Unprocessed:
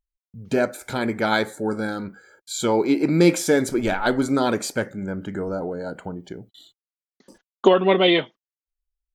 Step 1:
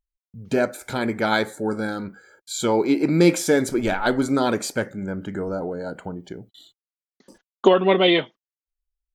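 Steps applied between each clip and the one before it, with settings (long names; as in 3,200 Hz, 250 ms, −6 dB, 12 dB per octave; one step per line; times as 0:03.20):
no processing that can be heard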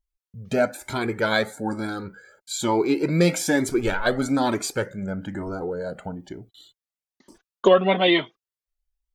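flanger whose copies keep moving one way rising 1.1 Hz
level +4 dB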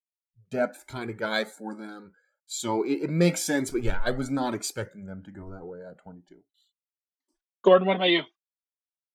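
noise reduction from a noise print of the clip's start 25 dB
low-shelf EQ 110 Hz +6 dB
multiband upward and downward expander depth 70%
level −6.5 dB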